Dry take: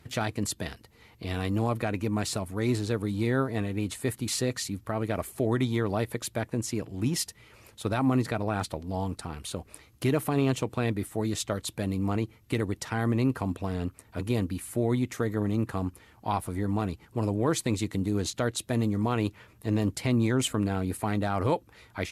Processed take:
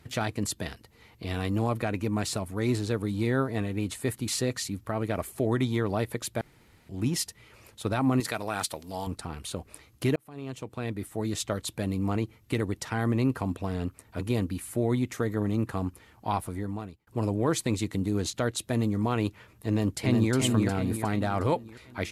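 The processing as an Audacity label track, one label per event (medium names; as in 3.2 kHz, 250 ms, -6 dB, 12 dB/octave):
6.410000	6.890000	room tone
8.200000	9.070000	tilt EQ +3 dB/octave
10.160000	11.440000	fade in
16.390000	17.070000	fade out
19.670000	20.330000	echo throw 360 ms, feedback 50%, level -3.5 dB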